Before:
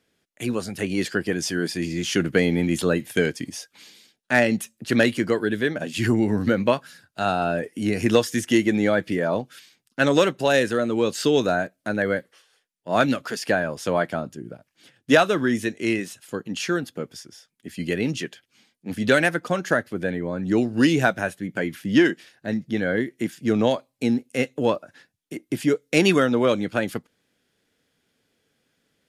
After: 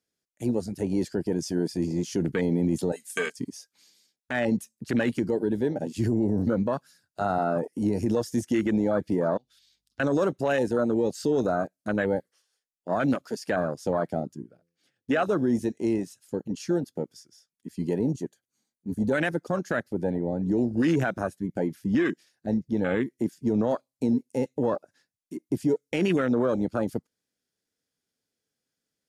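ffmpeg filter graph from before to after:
ffmpeg -i in.wav -filter_complex "[0:a]asettb=1/sr,asplit=3[link_01][link_02][link_03];[link_01]atrim=end=2.924[link_04];[link_02]atrim=start=2.92:end=3.36,asetpts=PTS-STARTPTS,afade=type=in:duration=0.004:curve=qsin,afade=type=out:start_time=0.436:duration=0.004:curve=qsin,highpass=frequency=1500:poles=1,equalizer=frequency=8300:width=1.4:gain=13,aecho=1:1:4.5:0.6,atrim=end_sample=19404[link_05];[link_03]atrim=start=3.356[link_06];[link_04][link_05]acrossfade=duration=0.004:curve1=hsin:curve2=qsin[link_07];[link_07][link_06]acrossfade=duration=0.004:curve1=qsin:curve2=hsin,asettb=1/sr,asplit=3[link_08][link_09][link_10];[link_08]atrim=end=9.374[link_11];[link_09]atrim=start=9.37:end=10,asetpts=PTS-STARTPTS,afade=type=in:duration=0.004:curve=qsin,afade=type=out:start_time=0.626:duration=0.004:curve=qsin,equalizer=frequency=3600:width=1.5:gain=12.5,acompressor=threshold=-47dB:ratio=3:attack=3.2:release=140:knee=1:detection=peak,aeval=exprs='val(0)+0.000316*(sin(2*PI*50*n/s)+sin(2*PI*2*50*n/s)/2+sin(2*PI*3*50*n/s)/3+sin(2*PI*4*50*n/s)/4+sin(2*PI*5*50*n/s)/5)':channel_layout=same[link_12];[link_10]atrim=start=9.996[link_13];[link_11][link_12]acrossfade=duration=0.004:curve1=hsin:curve2=qsin[link_14];[link_14][link_13]acrossfade=duration=0.004:curve1=qsin:curve2=hsin,asettb=1/sr,asplit=3[link_15][link_16][link_17];[link_15]atrim=end=14.444[link_18];[link_16]atrim=start=14.44:end=15.23,asetpts=PTS-STARTPTS,afade=type=in:duration=0.004:curve=qsin,afade=type=out:start_time=0.786:duration=0.004:curve=qsin,asuperstop=centerf=960:order=4:qfactor=7.4,bass=frequency=250:gain=-2,treble=frequency=4000:gain=-7,bandreject=frequency=84.78:width_type=h:width=4,bandreject=frequency=169.56:width_type=h:width=4,bandreject=frequency=254.34:width_type=h:width=4,bandreject=frequency=339.12:width_type=h:width=4,bandreject=frequency=423.9:width_type=h:width=4,bandreject=frequency=508.68:width_type=h:width=4[link_19];[link_17]atrim=start=15.226[link_20];[link_18][link_19]acrossfade=duration=0.004:curve1=hsin:curve2=qsin[link_21];[link_21][link_20]acrossfade=duration=0.004:curve1=qsin:curve2=hsin,asettb=1/sr,asplit=3[link_22][link_23][link_24];[link_22]atrim=end=17.994[link_25];[link_23]atrim=start=17.99:end=19.15,asetpts=PTS-STARTPTS,afade=type=in:duration=0.004:curve=qsin,afade=type=out:start_time=1.156:duration=0.004:curve=qsin,asuperstop=centerf=5200:order=4:qfactor=6.6,equalizer=frequency=2700:width=0.96:gain=-11.5[link_26];[link_24]atrim=start=19.146[link_27];[link_25][link_26]acrossfade=duration=0.004:curve1=hsin:curve2=qsin[link_28];[link_28][link_27]acrossfade=duration=0.004:curve1=qsin:curve2=hsin,afwtdn=0.0631,highshelf=frequency=4000:width_type=q:width=1.5:gain=6.5,alimiter=limit=-16dB:level=0:latency=1:release=28" out.wav

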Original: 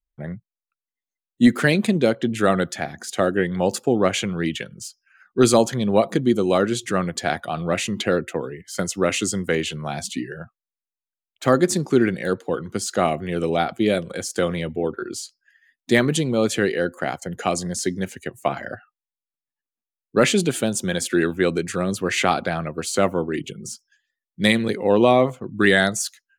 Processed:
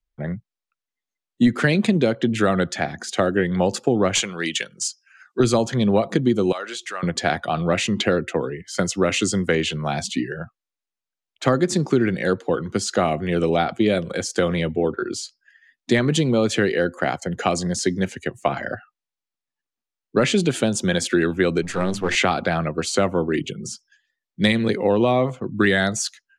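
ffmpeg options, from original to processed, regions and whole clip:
ffmpeg -i in.wav -filter_complex "[0:a]asettb=1/sr,asplit=3[link_01][link_02][link_03];[link_01]atrim=end=4.154[link_04];[link_02]atrim=start=4.15:end=5.4,asetpts=PTS-STARTPTS,afade=type=in:duration=0.004:curve=qsin,afade=type=out:start_time=1.246:duration=0.004:curve=qsin,highpass=frequency=700:poles=1,equalizer=frequency=7700:width=0.76:gain=11,aeval=exprs='clip(val(0),-1,0.188)':channel_layout=same[link_05];[link_03]atrim=start=5.396[link_06];[link_04][link_05]acrossfade=duration=0.004:curve1=hsin:curve2=qsin[link_07];[link_07][link_06]acrossfade=duration=0.004:curve1=qsin:curve2=hsin,asettb=1/sr,asplit=3[link_08][link_09][link_10];[link_08]atrim=end=6.524[link_11];[link_09]atrim=start=6.52:end=7.03,asetpts=PTS-STARTPTS,afade=type=in:duration=0.004:curve=qsin,afade=type=out:start_time=0.506:duration=0.004:curve=qsin,highpass=830,acompressor=threshold=-32dB:ratio=2.5:attack=3.2:release=140:knee=1:detection=peak[link_12];[link_10]atrim=start=7.026[link_13];[link_11][link_12]acrossfade=duration=0.004:curve1=hsin:curve2=qsin[link_14];[link_14][link_13]acrossfade=duration=0.004:curve1=qsin:curve2=hsin,asettb=1/sr,asplit=3[link_15][link_16][link_17];[link_15]atrim=end=21.624[link_18];[link_16]atrim=start=21.62:end=22.15,asetpts=PTS-STARTPTS,afade=type=in:duration=0.004:curve=qsin,afade=type=out:start_time=0.526:duration=0.004:curve=qsin,aeval=exprs='if(lt(val(0),0),0.447*val(0),val(0))':channel_layout=same,bandreject=frequency=50:width_type=h:width=6,bandreject=frequency=100:width_type=h:width=6,bandreject=frequency=150:width_type=h:width=6,bandreject=frequency=200:width_type=h:width=6,bandreject=frequency=250:width_type=h:width=6,bandreject=frequency=300:width_type=h:width=6,bandreject=frequency=350:width_type=h:width=6,bandreject=frequency=400:width_type=h:width=6[link_19];[link_17]atrim=start=22.146[link_20];[link_18][link_19]acrossfade=duration=0.004:curve1=hsin:curve2=qsin[link_21];[link_21][link_20]acrossfade=duration=0.004:curve1=qsin:curve2=hsin,lowpass=6800,acrossover=split=140[link_22][link_23];[link_23]acompressor=threshold=-19dB:ratio=6[link_24];[link_22][link_24]amix=inputs=2:normalize=0,volume=4dB" out.wav

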